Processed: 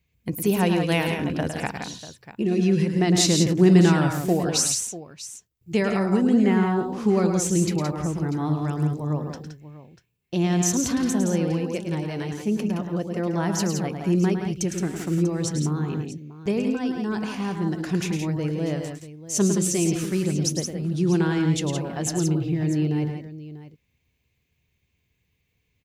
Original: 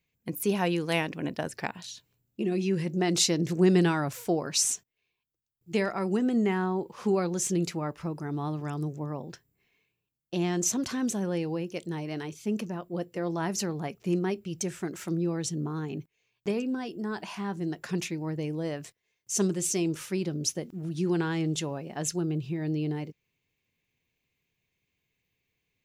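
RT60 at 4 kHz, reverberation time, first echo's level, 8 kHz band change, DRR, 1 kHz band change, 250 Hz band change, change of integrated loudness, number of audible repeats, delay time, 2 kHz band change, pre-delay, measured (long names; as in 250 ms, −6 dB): no reverb audible, no reverb audible, −7.5 dB, +4.5 dB, no reverb audible, +5.0 dB, +7.5 dB, +6.5 dB, 3, 107 ms, +4.5 dB, no reverb audible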